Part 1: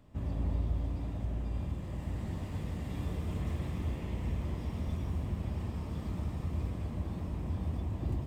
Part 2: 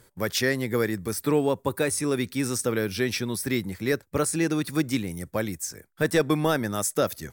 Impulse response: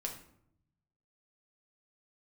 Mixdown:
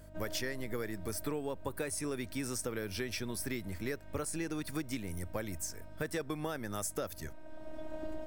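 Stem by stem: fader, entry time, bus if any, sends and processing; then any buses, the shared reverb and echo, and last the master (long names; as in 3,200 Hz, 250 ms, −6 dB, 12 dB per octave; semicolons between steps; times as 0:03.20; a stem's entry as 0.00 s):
0.0 dB, 0.00 s, send −15.5 dB, hollow resonant body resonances 640/1,500 Hz, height 18 dB; phases set to zero 312 Hz; automatic ducking −18 dB, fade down 1.95 s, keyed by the second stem
−6.0 dB, 0.00 s, no send, mains hum 50 Hz, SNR 19 dB; parametric band 83 Hz +11.5 dB 0.39 octaves; notch filter 3,800 Hz, Q 16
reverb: on, RT60 0.70 s, pre-delay 6 ms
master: low-shelf EQ 220 Hz −5 dB; downward compressor, threshold −33 dBFS, peak gain reduction 9.5 dB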